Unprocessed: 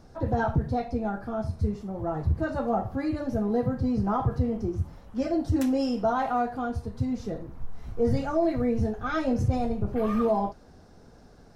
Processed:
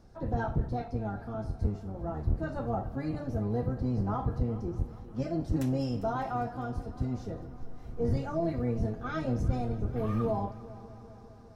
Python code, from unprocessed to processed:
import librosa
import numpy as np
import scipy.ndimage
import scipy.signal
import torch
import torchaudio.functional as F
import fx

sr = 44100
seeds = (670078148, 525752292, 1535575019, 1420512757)

y = fx.octave_divider(x, sr, octaves=1, level_db=1.0)
y = fx.echo_heads(y, sr, ms=201, heads='first and second', feedback_pct=67, wet_db=-21.0)
y = y * 10.0 ** (-7.0 / 20.0)